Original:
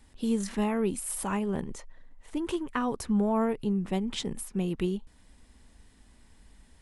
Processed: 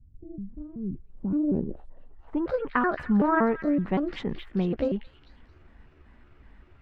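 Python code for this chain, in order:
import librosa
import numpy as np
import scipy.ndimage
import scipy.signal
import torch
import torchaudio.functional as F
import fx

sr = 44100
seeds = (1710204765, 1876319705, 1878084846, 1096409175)

y = fx.pitch_trill(x, sr, semitones=6.5, every_ms=189)
y = fx.echo_stepped(y, sr, ms=221, hz=2800.0, octaves=0.7, feedback_pct=70, wet_db=-4)
y = fx.filter_sweep_lowpass(y, sr, from_hz=120.0, to_hz=1700.0, start_s=0.78, end_s=2.64, q=1.5)
y = F.gain(torch.from_numpy(y), 3.5).numpy()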